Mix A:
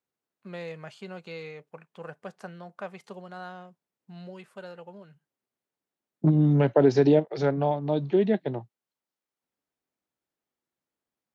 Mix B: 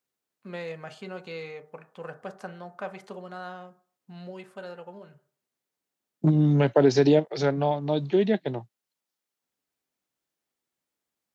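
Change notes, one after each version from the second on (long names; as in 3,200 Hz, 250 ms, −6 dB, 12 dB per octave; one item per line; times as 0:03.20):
second voice: add high-shelf EQ 2,800 Hz +10.5 dB
reverb: on, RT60 0.50 s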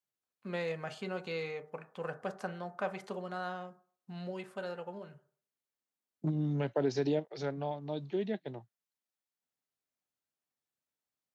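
second voice −12.0 dB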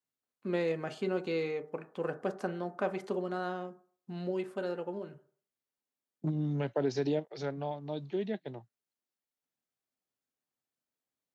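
first voice: add parametric band 320 Hz +13 dB 0.89 octaves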